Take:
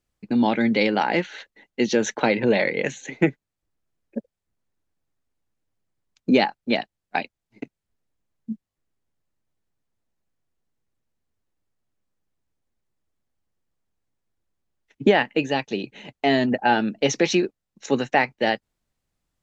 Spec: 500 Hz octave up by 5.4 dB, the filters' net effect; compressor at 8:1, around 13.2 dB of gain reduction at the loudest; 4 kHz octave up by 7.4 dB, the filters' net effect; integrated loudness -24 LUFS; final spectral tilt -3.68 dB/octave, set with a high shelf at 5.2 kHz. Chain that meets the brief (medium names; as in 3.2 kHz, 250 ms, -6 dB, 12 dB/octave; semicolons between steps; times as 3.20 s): peaking EQ 500 Hz +6.5 dB; peaking EQ 4 kHz +7 dB; treble shelf 5.2 kHz +6.5 dB; compression 8:1, threshold -22 dBFS; trim +4.5 dB